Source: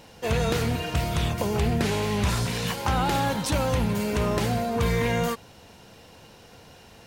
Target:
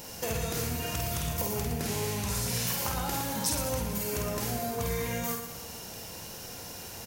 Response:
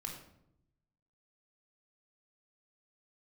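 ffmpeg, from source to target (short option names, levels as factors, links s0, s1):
-filter_complex "[0:a]highshelf=f=6400:g=6,acompressor=threshold=0.0178:ratio=6,aexciter=amount=2.3:drive=5.8:freq=5100,asplit=2[s0][s1];[s1]aecho=0:1:50|115|199.5|309.4|452.2:0.631|0.398|0.251|0.158|0.1[s2];[s0][s2]amix=inputs=2:normalize=0,volume=1.26"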